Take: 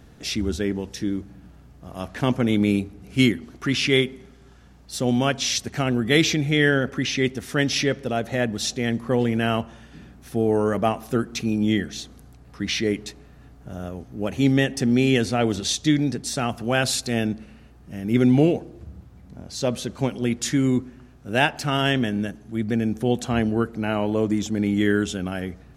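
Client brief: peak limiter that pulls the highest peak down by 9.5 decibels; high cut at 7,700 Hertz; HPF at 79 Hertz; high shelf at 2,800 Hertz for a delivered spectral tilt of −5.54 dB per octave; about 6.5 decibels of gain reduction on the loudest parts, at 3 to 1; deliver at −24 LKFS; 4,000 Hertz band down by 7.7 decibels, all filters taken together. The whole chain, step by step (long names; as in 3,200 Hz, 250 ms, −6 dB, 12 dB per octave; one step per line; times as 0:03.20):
high-pass filter 79 Hz
low-pass filter 7,700 Hz
high-shelf EQ 2,800 Hz −8 dB
parametric band 4,000 Hz −3.5 dB
downward compressor 3 to 1, threshold −22 dBFS
level +7.5 dB
brickwall limiter −13 dBFS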